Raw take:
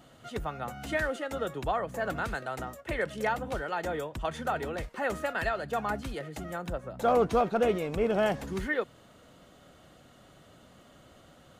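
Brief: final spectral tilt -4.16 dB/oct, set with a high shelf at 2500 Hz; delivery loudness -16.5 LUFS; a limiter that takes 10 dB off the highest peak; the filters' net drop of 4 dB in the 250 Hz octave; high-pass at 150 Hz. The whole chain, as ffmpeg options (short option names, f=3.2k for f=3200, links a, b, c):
-af "highpass=150,equalizer=f=250:t=o:g=-4,highshelf=f=2.5k:g=-8,volume=20.5dB,alimiter=limit=-5.5dB:level=0:latency=1"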